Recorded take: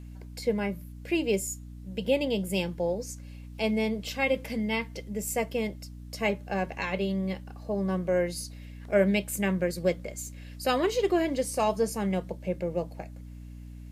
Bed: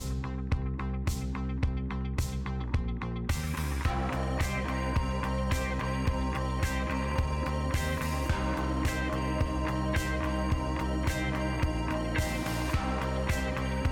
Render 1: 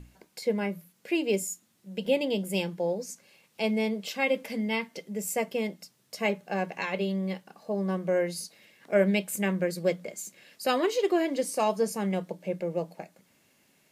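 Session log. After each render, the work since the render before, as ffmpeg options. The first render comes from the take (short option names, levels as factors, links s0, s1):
-af "bandreject=f=60:t=h:w=6,bandreject=f=120:t=h:w=6,bandreject=f=180:t=h:w=6,bandreject=f=240:t=h:w=6,bandreject=f=300:t=h:w=6"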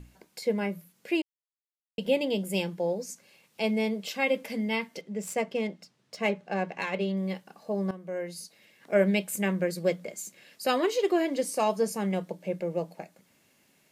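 -filter_complex "[0:a]asettb=1/sr,asplit=3[s0][s1][s2];[s0]atrim=end=5.014[s3];[s1]atrim=start=5.01:end=7.17,asetpts=PTS-STARTPTS,afade=t=in:d=0.004:c=qsin,afade=t=out:st=2.156:d=0.004:c=qsin,adynamicsmooth=sensitivity=7.5:basefreq=5200[s4];[s2]atrim=start=7.166[s5];[s3][s4]acrossfade=d=0.004:c1=hsin:c2=qsin[s6];[s6][s5]acrossfade=d=0.004:c1=qsin:c2=hsin,asplit=4[s7][s8][s9][s10];[s7]atrim=end=1.22,asetpts=PTS-STARTPTS,afade=t=out:st=1.216:d=0.004:c=hsin[s11];[s8]atrim=start=1.22:end=1.98,asetpts=PTS-STARTPTS,volume=0[s12];[s9]atrim=start=1.98:end=7.91,asetpts=PTS-STARTPTS,afade=t=in:d=0.004:c=hsin,afade=t=out:st=5.926:d=0.004:c=hsin:silence=0.199526[s13];[s10]atrim=start=7.91,asetpts=PTS-STARTPTS,afade=t=in:d=1.02:silence=0.199526[s14];[s11][s12][s13][s14]concat=n=4:v=0:a=1"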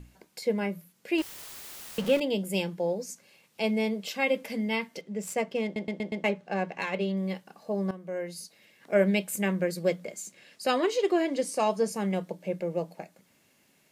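-filter_complex "[0:a]asettb=1/sr,asplit=3[s0][s1][s2];[s0]atrim=end=1.184[s3];[s1]atrim=start=1.18:end=2.2,asetpts=PTS-STARTPTS,afade=t=in:d=0.004:c=qsin,afade=t=out:st=1.016:d=0.004:c=qsin,aeval=exprs='val(0)+0.5*0.0251*sgn(val(0))':c=same[s4];[s2]atrim=start=2.196[s5];[s3][s4]acrossfade=d=0.004:c1=hsin:c2=qsin[s6];[s6][s5]acrossfade=d=0.004:c1=qsin:c2=hsin,asettb=1/sr,asplit=3[s7][s8][s9];[s7]atrim=end=10.184[s10];[s8]atrim=start=10.18:end=11.96,asetpts=PTS-STARTPTS,afade=t=in:d=0.004:c=qsin,afade=t=out:st=1.776:d=0.004:c=qsin,equalizer=f=13000:w=2.3:g=-10.5[s11];[s9]atrim=start=11.956[s12];[s10][s11]acrossfade=d=0.004:c1=hsin:c2=qsin[s13];[s13][s12]acrossfade=d=0.004:c1=qsin:c2=hsin,asplit=6[s14][s15][s16][s17][s18][s19];[s14]atrim=end=5.762[s20];[s15]atrim=start=5.638:end=5.762[s21];[s16]atrim=start=5.638:end=5.762[s22];[s17]atrim=start=5.638:end=5.762[s23];[s18]atrim=start=5.638:end=5.762[s24];[s19]atrim=start=6.238[s25];[s20][s21]acrossfade=d=0.004:c1=hsin:c2=hsin[s26];[s26][s22]acrossfade=d=0.004:c1=hsin:c2=hsin[s27];[s27][s23]acrossfade=d=0.004:c1=hsin:c2=hsin[s28];[s28][s24]acrossfade=d=0.004:c1=hsin:c2=hsin[s29];[s29][s25]acrossfade=d=0.004:c1=hsin:c2=hsin"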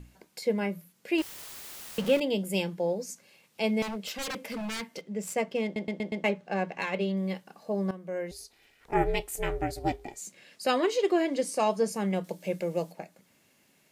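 -filter_complex "[0:a]asettb=1/sr,asplit=3[s0][s1][s2];[s0]atrim=end=3.824[s3];[s1]atrim=start=3.82:end=5.07,asetpts=PTS-STARTPTS,afade=t=in:d=0.004:c=qsin,afade=t=out:st=1.246:d=0.004:c=qsin,aeval=exprs='0.0335*(abs(mod(val(0)/0.0335+3,4)-2)-1)':c=same[s4];[s2]atrim=start=5.066[s5];[s3][s4]acrossfade=d=0.004:c1=hsin:c2=qsin[s6];[s6][s5]acrossfade=d=0.004:c1=qsin:c2=hsin,asettb=1/sr,asplit=3[s7][s8][s9];[s7]atrim=end=8.314[s10];[s8]atrim=start=8.31:end=10.22,asetpts=PTS-STARTPTS,afade=t=in:d=0.004:c=qsin,afade=t=out:st=1.906:d=0.004:c=qsin,aeval=exprs='val(0)*sin(2*PI*230*n/s)':c=same[s11];[s9]atrim=start=10.216[s12];[s10][s11]acrossfade=d=0.004:c1=hsin:c2=qsin[s13];[s13][s12]acrossfade=d=0.004:c1=qsin:c2=hsin,asettb=1/sr,asplit=3[s14][s15][s16];[s14]atrim=end=12.244[s17];[s15]atrim=start=12.24:end=12.92,asetpts=PTS-STARTPTS,afade=t=in:d=0.004:c=qsin,afade=t=out:st=0.676:d=0.004:c=qsin,highshelf=f=2900:g=10.5[s18];[s16]atrim=start=12.916[s19];[s17][s18]acrossfade=d=0.004:c1=hsin:c2=qsin[s20];[s20][s19]acrossfade=d=0.004:c1=qsin:c2=hsin"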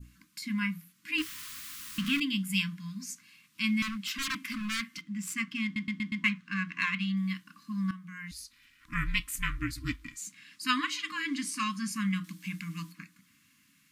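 -af "adynamicequalizer=threshold=0.00794:dfrequency=2200:dqfactor=0.72:tfrequency=2200:tqfactor=0.72:attack=5:release=100:ratio=0.375:range=2.5:mode=boostabove:tftype=bell,afftfilt=real='re*(1-between(b*sr/4096,320,1000))':imag='im*(1-between(b*sr/4096,320,1000))':win_size=4096:overlap=0.75"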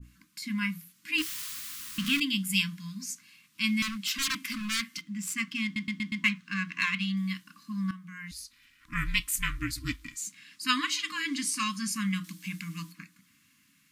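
-af "adynamicequalizer=threshold=0.00631:dfrequency=2900:dqfactor=0.7:tfrequency=2900:tqfactor=0.7:attack=5:release=100:ratio=0.375:range=3.5:mode=boostabove:tftype=highshelf"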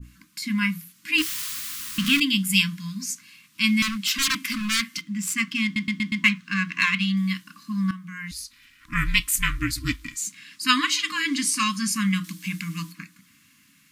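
-af "volume=2.24"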